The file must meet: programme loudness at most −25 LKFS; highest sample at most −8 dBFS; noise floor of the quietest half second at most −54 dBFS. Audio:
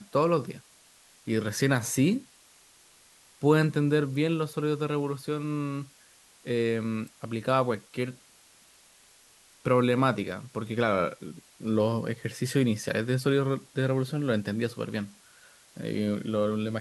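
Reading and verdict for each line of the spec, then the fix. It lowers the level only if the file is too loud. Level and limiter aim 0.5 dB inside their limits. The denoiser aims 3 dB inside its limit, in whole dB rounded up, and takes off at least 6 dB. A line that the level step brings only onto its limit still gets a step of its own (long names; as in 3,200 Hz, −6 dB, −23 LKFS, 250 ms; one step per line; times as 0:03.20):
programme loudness −28.5 LKFS: in spec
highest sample −10.5 dBFS: in spec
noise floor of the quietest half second −58 dBFS: in spec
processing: no processing needed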